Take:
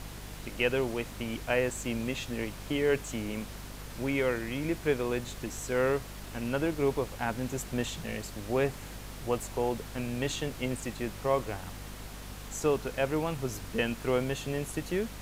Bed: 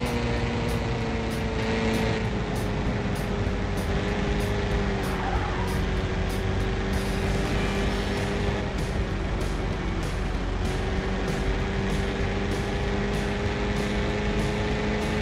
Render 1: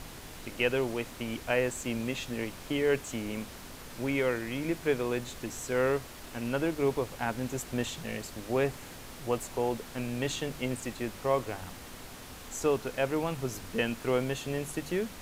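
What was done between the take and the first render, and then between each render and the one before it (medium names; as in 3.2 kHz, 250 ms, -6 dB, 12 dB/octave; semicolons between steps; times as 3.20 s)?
hum notches 50/100/150/200 Hz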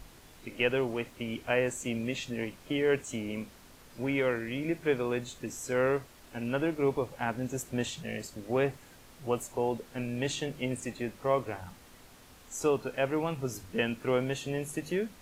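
noise print and reduce 9 dB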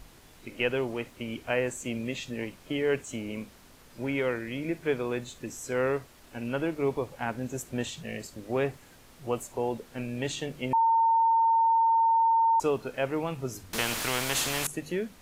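10.73–12.60 s: bleep 909 Hz -19.5 dBFS; 13.73–14.67 s: spectrum-flattening compressor 4:1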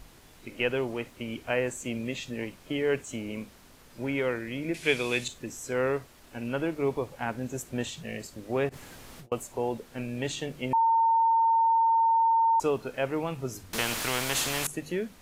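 4.74–5.28 s: high-order bell 4.8 kHz +14.5 dB 2.7 oct; 8.69–9.32 s: compressor with a negative ratio -50 dBFS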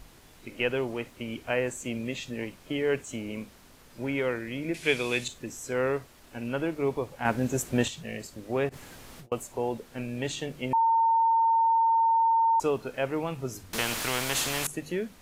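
7.25–7.88 s: gain +6.5 dB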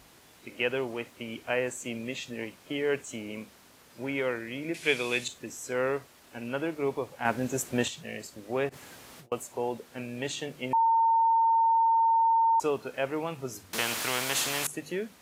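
high-pass 67 Hz; bass shelf 230 Hz -7 dB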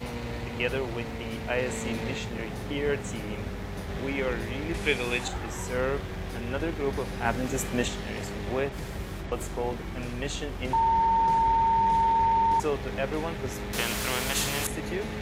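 add bed -8.5 dB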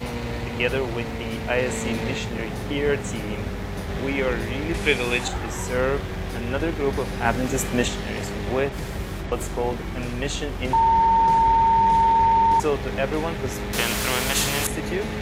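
trim +5.5 dB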